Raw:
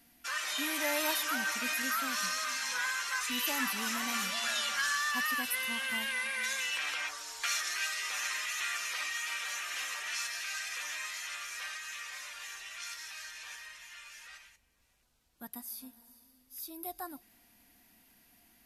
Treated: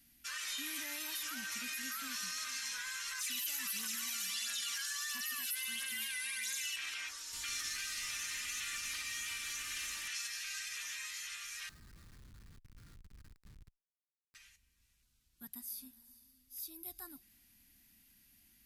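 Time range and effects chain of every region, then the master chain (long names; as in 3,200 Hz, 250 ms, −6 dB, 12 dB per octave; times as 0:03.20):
0:03.18–0:06.76: spectral tilt +2.5 dB per octave + phase shifter 1.5 Hz, delay 1.5 ms, feedback 47%
0:07.33–0:10.08: linear delta modulator 64 kbit/s, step −34.5 dBFS + comb filter 3.4 ms, depth 40%
0:11.69–0:14.35: low-pass filter 1,500 Hz 24 dB per octave + comparator with hysteresis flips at −48.5 dBFS
whole clip: brickwall limiter −27 dBFS; guitar amp tone stack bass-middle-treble 6-0-2; level +13 dB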